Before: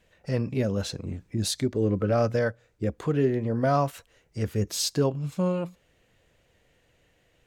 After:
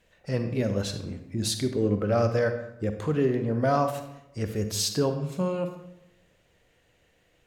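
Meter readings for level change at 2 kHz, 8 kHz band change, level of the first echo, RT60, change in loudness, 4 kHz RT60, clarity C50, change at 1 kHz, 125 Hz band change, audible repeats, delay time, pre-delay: +0.5 dB, +0.5 dB, none, 0.85 s, 0.0 dB, 0.55 s, 8.5 dB, +0.5 dB, -1.0 dB, none, none, 38 ms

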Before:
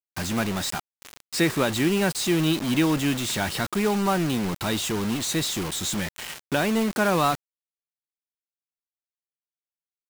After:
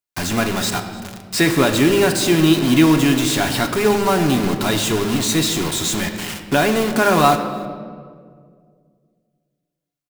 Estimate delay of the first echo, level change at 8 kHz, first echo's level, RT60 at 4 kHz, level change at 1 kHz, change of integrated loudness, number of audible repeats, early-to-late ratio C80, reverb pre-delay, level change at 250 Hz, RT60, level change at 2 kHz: 0.298 s, +7.0 dB, -21.5 dB, 1.1 s, +8.0 dB, +7.5 dB, 1, 9.0 dB, 3 ms, +7.5 dB, 2.0 s, +7.0 dB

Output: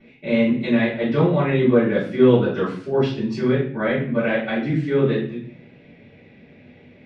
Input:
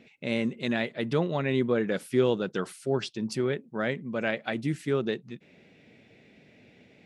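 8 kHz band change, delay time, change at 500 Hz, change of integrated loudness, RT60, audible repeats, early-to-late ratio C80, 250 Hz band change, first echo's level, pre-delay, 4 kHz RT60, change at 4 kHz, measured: n/a, none, +9.0 dB, +9.0 dB, 0.50 s, none, 9.0 dB, +10.5 dB, none, 3 ms, 0.40 s, +3.0 dB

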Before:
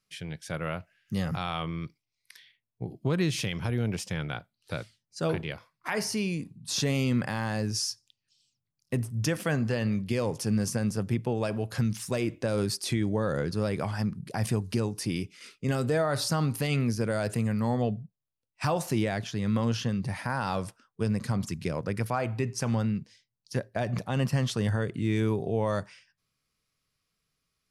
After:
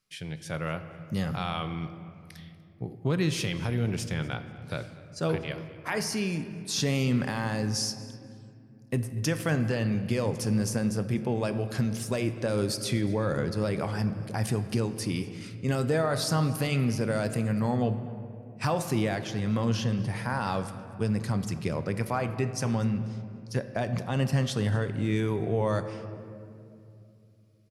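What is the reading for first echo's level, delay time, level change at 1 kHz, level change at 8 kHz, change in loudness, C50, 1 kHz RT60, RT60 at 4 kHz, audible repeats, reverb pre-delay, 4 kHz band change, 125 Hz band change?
-21.0 dB, 0.242 s, +0.5 dB, 0.0 dB, +0.5 dB, 11.0 dB, 2.3 s, 1.4 s, 1, 7 ms, +0.5 dB, +1.0 dB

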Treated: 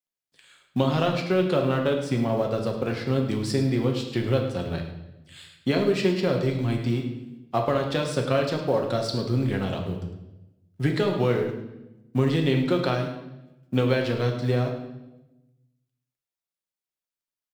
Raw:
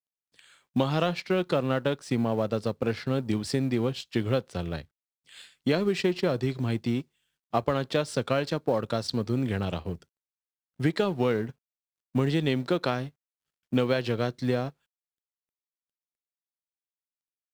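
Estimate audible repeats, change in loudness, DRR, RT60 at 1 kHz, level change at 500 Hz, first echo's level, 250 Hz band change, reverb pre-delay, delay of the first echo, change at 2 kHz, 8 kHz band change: 1, +3.0 dB, 1.5 dB, 0.90 s, +3.0 dB, -13.5 dB, +2.5 dB, 5 ms, 0.105 s, +2.5 dB, +2.0 dB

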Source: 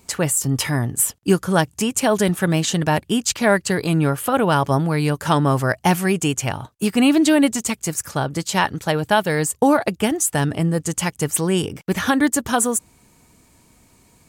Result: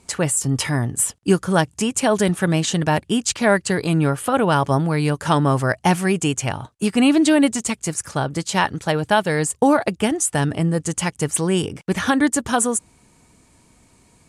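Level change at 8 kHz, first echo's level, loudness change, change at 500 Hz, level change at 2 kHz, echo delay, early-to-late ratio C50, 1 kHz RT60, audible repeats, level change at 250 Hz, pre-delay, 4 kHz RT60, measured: -0.5 dB, none, 0.0 dB, 0.0 dB, 0.0 dB, none, none, none, none, 0.0 dB, none, none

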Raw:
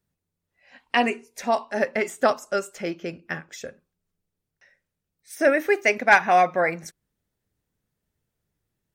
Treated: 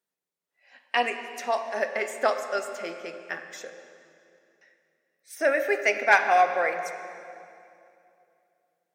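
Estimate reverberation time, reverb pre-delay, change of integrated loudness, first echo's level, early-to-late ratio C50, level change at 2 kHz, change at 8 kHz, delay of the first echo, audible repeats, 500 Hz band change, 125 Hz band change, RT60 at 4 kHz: 2.7 s, 5 ms, -3.0 dB, none, 8.0 dB, -2.0 dB, -2.5 dB, none, none, -3.5 dB, under -15 dB, 2.2 s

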